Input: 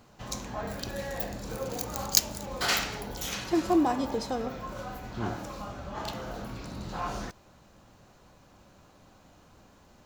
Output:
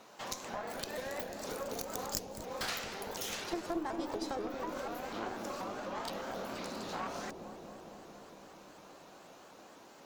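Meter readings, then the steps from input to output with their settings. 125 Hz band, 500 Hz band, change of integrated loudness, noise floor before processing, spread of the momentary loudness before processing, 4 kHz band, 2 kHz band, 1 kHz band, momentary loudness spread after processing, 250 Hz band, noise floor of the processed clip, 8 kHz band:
-13.0 dB, -4.5 dB, -8.0 dB, -58 dBFS, 15 LU, -8.5 dB, -6.0 dB, -5.5 dB, 17 LU, -9.5 dB, -56 dBFS, -10.0 dB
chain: high-pass 380 Hz 12 dB/octave; compression 4:1, threshold -43 dBFS, peak gain reduction 22.5 dB; Chebyshev shaper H 6 -15 dB, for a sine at -19.5 dBFS; feedback echo behind a low-pass 230 ms, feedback 77%, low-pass 480 Hz, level -3 dB; vibrato with a chosen wave saw up 4.1 Hz, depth 160 cents; trim +4 dB

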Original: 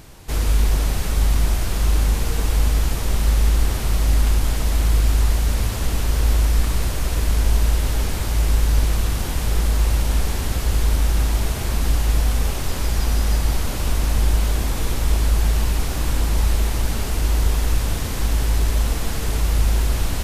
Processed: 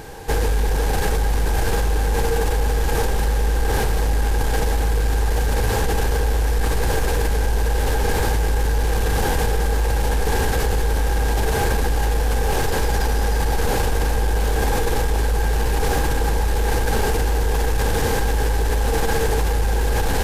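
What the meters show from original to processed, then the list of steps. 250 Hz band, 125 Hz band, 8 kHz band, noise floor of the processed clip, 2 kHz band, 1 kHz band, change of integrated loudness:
+1.5 dB, -1.5 dB, -0.5 dB, -20 dBFS, +6.0 dB, +8.0 dB, 0.0 dB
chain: small resonant body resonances 470/810/1600 Hz, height 15 dB, ringing for 35 ms; in parallel at -1 dB: compressor with a negative ratio -20 dBFS, ratio -0.5; on the sum: saturation -7 dBFS, distortion -21 dB; trim -3.5 dB

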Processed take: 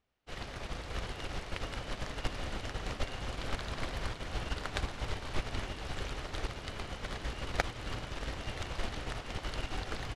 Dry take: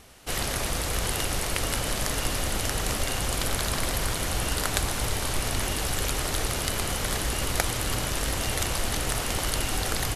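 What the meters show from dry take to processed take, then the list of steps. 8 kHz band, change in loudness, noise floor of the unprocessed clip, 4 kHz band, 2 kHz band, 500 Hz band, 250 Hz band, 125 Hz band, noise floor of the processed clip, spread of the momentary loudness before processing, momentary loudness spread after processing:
-23.0 dB, -12.0 dB, -30 dBFS, -12.5 dB, -10.0 dB, -9.5 dB, -10.0 dB, -9.5 dB, -46 dBFS, 1 LU, 4 LU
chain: low-pass 3.9 kHz 12 dB/octave; upward expansion 2.5:1, over -41 dBFS; trim -2.5 dB

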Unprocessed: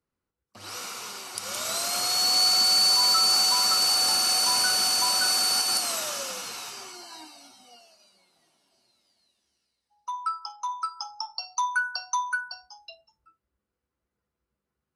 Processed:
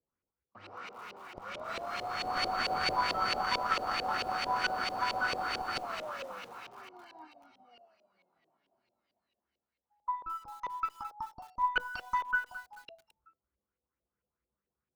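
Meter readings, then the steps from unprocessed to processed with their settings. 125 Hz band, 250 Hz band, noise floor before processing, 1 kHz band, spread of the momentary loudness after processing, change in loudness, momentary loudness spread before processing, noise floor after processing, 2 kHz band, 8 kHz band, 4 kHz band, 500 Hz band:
no reading, -1.5 dB, under -85 dBFS, -2.0 dB, 17 LU, -12.0 dB, 18 LU, under -85 dBFS, -3.0 dB, -28.0 dB, -18.0 dB, -0.5 dB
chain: Chebyshev shaper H 2 -12 dB, 3 -14 dB, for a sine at -11 dBFS; LFO low-pass saw up 4.5 Hz 480–2800 Hz; bit-crushed delay 217 ms, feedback 35%, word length 8-bit, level -12 dB

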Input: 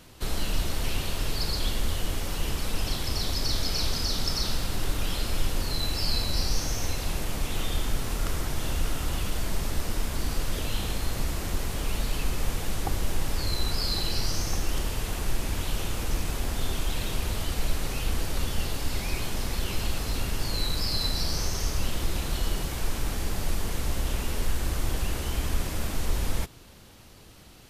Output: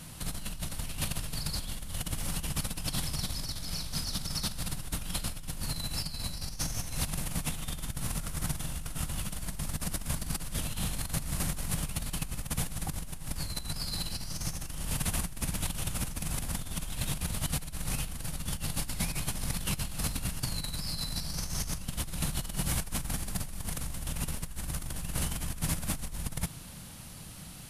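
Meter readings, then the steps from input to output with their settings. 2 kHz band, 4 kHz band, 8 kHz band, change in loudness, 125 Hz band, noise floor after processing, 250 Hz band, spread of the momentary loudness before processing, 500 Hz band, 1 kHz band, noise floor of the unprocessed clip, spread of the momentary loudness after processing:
-6.0 dB, -6.5 dB, +0.5 dB, -4.0 dB, -3.5 dB, -44 dBFS, -3.0 dB, 4 LU, -10.5 dB, -6.5 dB, -48 dBFS, 5 LU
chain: compressor with a negative ratio -32 dBFS, ratio -1; fifteen-band graphic EQ 160 Hz +10 dB, 400 Hz -9 dB, 10 kHz +11 dB; trim -3.5 dB

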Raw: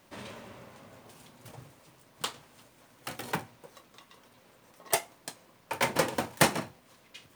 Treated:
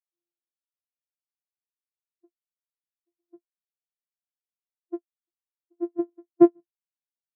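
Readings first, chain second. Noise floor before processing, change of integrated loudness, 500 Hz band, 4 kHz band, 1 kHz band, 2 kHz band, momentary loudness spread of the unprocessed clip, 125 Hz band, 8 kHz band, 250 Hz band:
-61 dBFS, +7.5 dB, +6.0 dB, under -40 dB, -8.0 dB, under -25 dB, 24 LU, under -10 dB, under -40 dB, +12.5 dB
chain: sorted samples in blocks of 128 samples; level-controlled noise filter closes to 800 Hz, open at -25 dBFS; spectral contrast expander 4:1

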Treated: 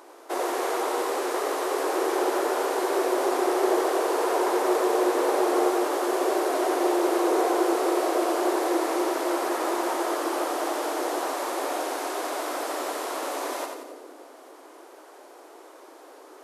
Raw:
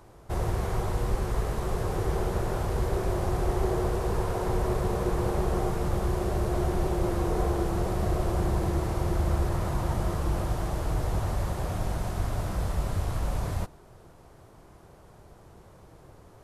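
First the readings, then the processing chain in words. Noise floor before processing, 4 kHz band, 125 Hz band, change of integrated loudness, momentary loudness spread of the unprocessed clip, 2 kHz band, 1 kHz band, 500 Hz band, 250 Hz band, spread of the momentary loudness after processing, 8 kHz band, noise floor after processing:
-53 dBFS, +9.0 dB, under -40 dB, +4.0 dB, 4 LU, +9.0 dB, +8.5 dB, +7.5 dB, +4.5 dB, 7 LU, +9.0 dB, -49 dBFS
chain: brick-wall FIR high-pass 260 Hz; bass shelf 340 Hz -3.5 dB; two-band feedback delay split 530 Hz, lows 297 ms, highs 88 ms, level -5.5 dB; trim +7.5 dB

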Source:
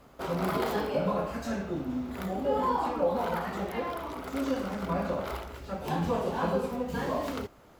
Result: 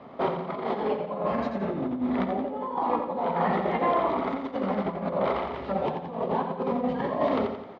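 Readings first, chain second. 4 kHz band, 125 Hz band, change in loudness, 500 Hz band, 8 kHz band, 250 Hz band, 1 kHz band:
-1.5 dB, -0.5 dB, +3.5 dB, +3.5 dB, under -20 dB, +3.0 dB, +4.5 dB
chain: bass shelf 390 Hz +8 dB; compressor with a negative ratio -30 dBFS, ratio -0.5; cabinet simulation 270–3100 Hz, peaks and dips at 310 Hz -7 dB, 470 Hz -4 dB, 1.5 kHz -10 dB, 2.7 kHz -8 dB; on a send: feedback delay 87 ms, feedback 48%, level -7.5 dB; on the sum: trim +7 dB

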